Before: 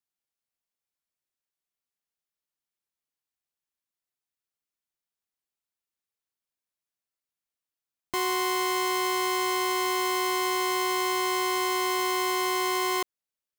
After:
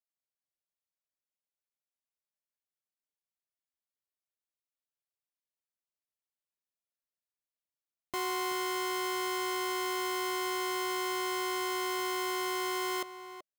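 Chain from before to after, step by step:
leveller curve on the samples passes 1
parametric band 600 Hz +7.5 dB 0.34 octaves
slap from a distant wall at 65 metres, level −12 dB
level −8.5 dB

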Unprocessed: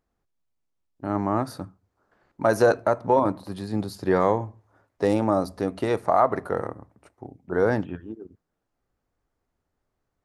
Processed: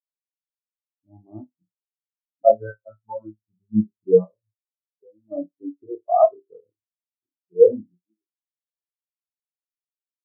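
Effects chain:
adaptive Wiener filter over 41 samples
0:02.49–0:03.38: phases set to zero 110 Hz
0:04.24–0:05.32: downward compressor 12 to 1, threshold −27 dBFS, peak gain reduction 12 dB
on a send: flutter between parallel walls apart 4.8 metres, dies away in 0.39 s
on the sum: every bin expanded away from the loudest bin 4 to 1
level +3.5 dB

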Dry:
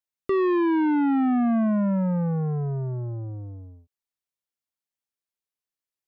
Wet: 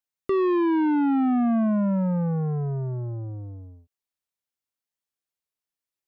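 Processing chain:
dynamic equaliser 1,900 Hz, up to −5 dB, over −48 dBFS, Q 3.3

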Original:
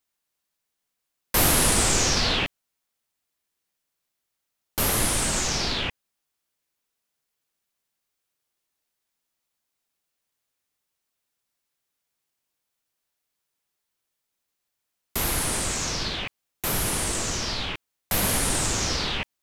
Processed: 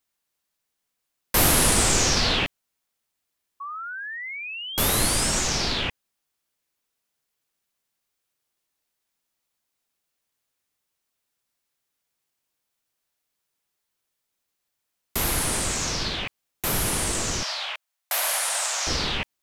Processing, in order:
0:03.60–0:05.39: sound drawn into the spectrogram rise 1,100–5,900 Hz −35 dBFS
0:17.43–0:18.87: elliptic high-pass filter 610 Hz, stop band 70 dB
level +1 dB

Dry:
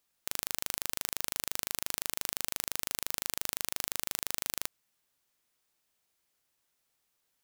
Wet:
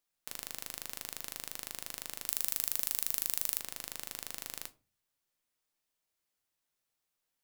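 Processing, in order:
0:02.26–0:03.60: high-shelf EQ 5,800 Hz +11.5 dB
rectangular room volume 130 cubic metres, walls furnished, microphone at 0.55 metres
level −7.5 dB

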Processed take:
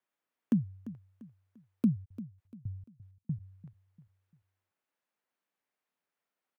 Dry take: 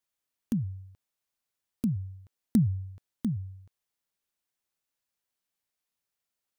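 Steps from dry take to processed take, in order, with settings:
three-way crossover with the lows and the highs turned down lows −22 dB, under 160 Hz, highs −15 dB, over 2,500 Hz
0:02.04–0:03.39: gate pattern "x..x..x..x" 164 BPM −60 dB
repeating echo 345 ms, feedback 37%, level −15.5 dB
level +4.5 dB

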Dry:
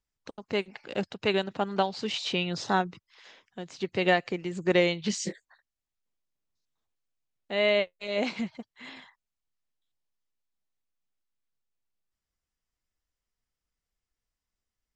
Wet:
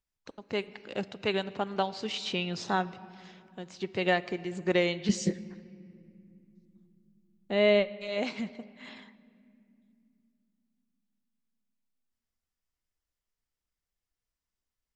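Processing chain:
0:05.09–0:07.90: low-shelf EQ 480 Hz +11 dB
on a send: convolution reverb RT60 2.6 s, pre-delay 3 ms, DRR 16 dB
on the sum: level −3 dB

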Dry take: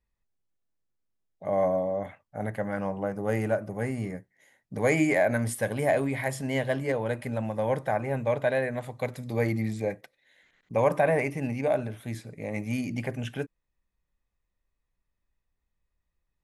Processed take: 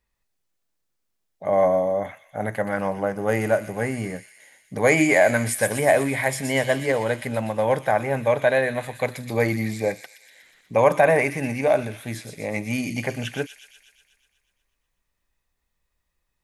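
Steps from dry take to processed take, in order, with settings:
low-shelf EQ 380 Hz −7 dB
on a send: delay with a high-pass on its return 122 ms, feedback 65%, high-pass 3,500 Hz, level −4.5 dB
on the sum: level +8.5 dB

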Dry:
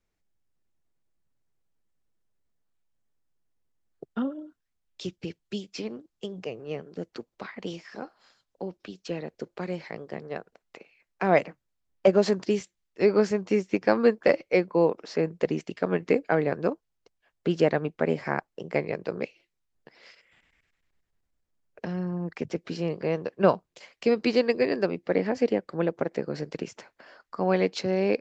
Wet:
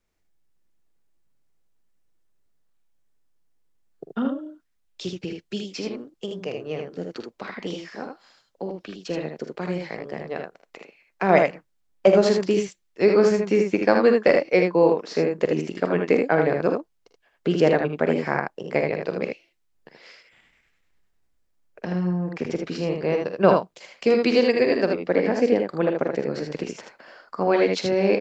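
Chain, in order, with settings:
parametric band 75 Hz −3.5 dB 2.1 octaves
on a send: ambience of single reflections 45 ms −11.5 dB, 57 ms −14 dB, 78 ms −4.5 dB
on the sum: level +3.5 dB

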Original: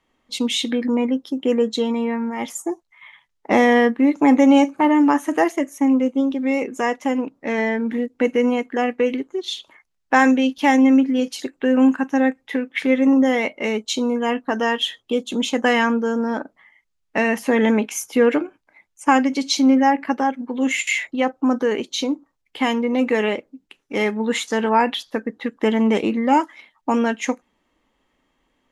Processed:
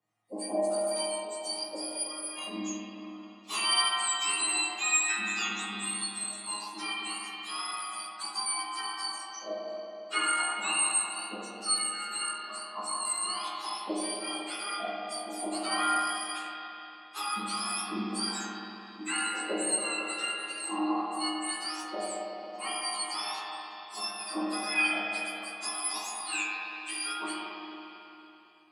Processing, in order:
frequency axis turned over on the octave scale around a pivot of 1,500 Hz
resonators tuned to a chord G#2 fifth, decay 0.3 s
spring reverb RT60 3.2 s, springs 45/55 ms, chirp 75 ms, DRR −3.5 dB

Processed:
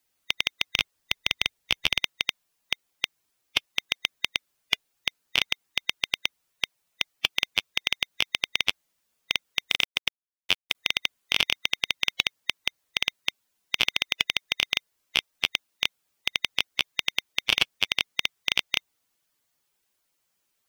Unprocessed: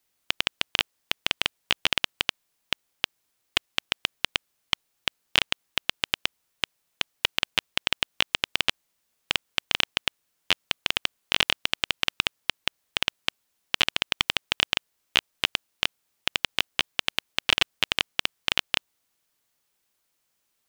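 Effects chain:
spectral magnitudes quantised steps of 15 dB
0:00.69–0:02.04: low-shelf EQ 130 Hz +8 dB
0:09.70–0:10.75: bit-depth reduction 8 bits, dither none

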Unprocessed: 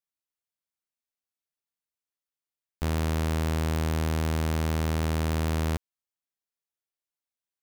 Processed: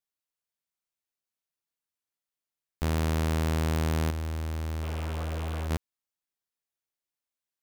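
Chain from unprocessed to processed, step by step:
0:04.86–0:05.64: healed spectral selection 400–1,600 Hz
0:04.10–0:05.71: hard clipping −30.5 dBFS, distortion −9 dB

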